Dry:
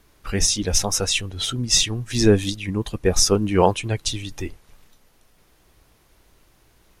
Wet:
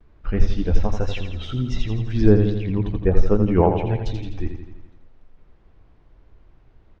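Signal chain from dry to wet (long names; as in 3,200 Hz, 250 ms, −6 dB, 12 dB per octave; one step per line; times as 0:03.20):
treble cut that deepens with the level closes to 2,500 Hz, closed at −12.5 dBFS
low-shelf EQ 97 Hz +10 dB
mains-hum notches 50/100 Hz
pitch vibrato 1.3 Hz 73 cents
head-to-tape spacing loss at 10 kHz 38 dB
repeating echo 84 ms, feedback 58%, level −7.5 dB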